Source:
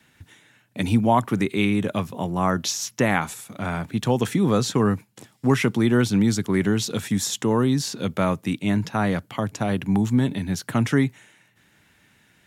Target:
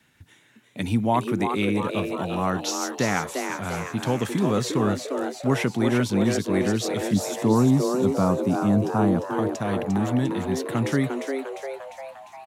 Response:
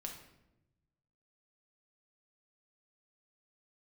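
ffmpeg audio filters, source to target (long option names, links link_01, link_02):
-filter_complex "[0:a]asettb=1/sr,asplit=3[link_01][link_02][link_03];[link_01]atrim=end=7.134[link_04];[link_02]atrim=start=7.13:end=9.37,asetpts=PTS-STARTPTS,afade=type=in:duration=0.004:curve=qsin,afade=type=out:start_time=2.236:duration=0.004:curve=qsin,equalizer=frequency=125:width_type=o:width=1:gain=5,equalizer=frequency=250:width_type=o:width=1:gain=5,equalizer=frequency=1000:width_type=o:width=1:gain=6,equalizer=frequency=2000:width_type=o:width=1:gain=-11,equalizer=frequency=4000:width_type=o:width=1:gain=-6,equalizer=frequency=8000:width_type=o:width=1:gain=-3[link_05];[link_03]atrim=start=9.366[link_06];[link_04][link_05]acrossfade=duration=0.004:curve1=hsin:curve2=qsin[link_07];[link_07][link_06]acrossfade=duration=0.004:curve1=qsin:curve2=hsin,asplit=8[link_08][link_09][link_10][link_11][link_12][link_13][link_14][link_15];[link_09]adelay=350,afreqshift=130,volume=-6dB[link_16];[link_10]adelay=700,afreqshift=260,volume=-10.9dB[link_17];[link_11]adelay=1050,afreqshift=390,volume=-15.8dB[link_18];[link_12]adelay=1400,afreqshift=520,volume=-20.6dB[link_19];[link_13]adelay=1750,afreqshift=650,volume=-25.5dB[link_20];[link_14]adelay=2100,afreqshift=780,volume=-30.4dB[link_21];[link_15]adelay=2450,afreqshift=910,volume=-35.3dB[link_22];[link_08][link_16][link_17][link_18][link_19][link_20][link_21][link_22]amix=inputs=8:normalize=0,volume=-3.5dB"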